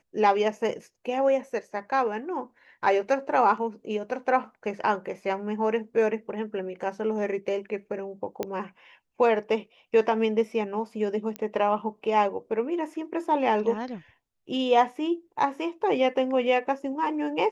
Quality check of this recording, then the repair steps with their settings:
0:08.43: click −16 dBFS
0:11.36: click −19 dBFS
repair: click removal

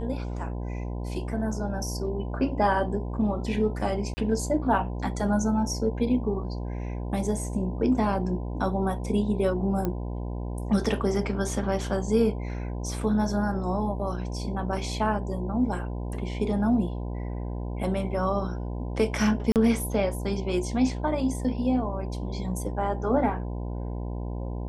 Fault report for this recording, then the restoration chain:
mains buzz 60 Hz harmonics 17 −32 dBFS
0:04.14–0:04.17: drop-out 30 ms
0:09.85: click −16 dBFS
0:19.52–0:19.56: drop-out 38 ms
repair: click removal
hum removal 60 Hz, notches 17
repair the gap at 0:04.14, 30 ms
repair the gap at 0:19.52, 38 ms

